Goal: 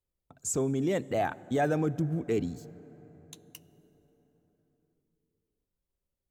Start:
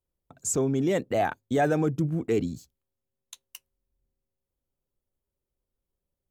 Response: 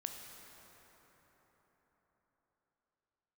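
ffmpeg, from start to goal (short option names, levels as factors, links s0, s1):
-filter_complex "[0:a]asplit=2[s0][s1];[1:a]atrim=start_sample=2205,lowshelf=f=200:g=8.5[s2];[s1][s2]afir=irnorm=-1:irlink=0,volume=0.224[s3];[s0][s3]amix=inputs=2:normalize=0,volume=0.562"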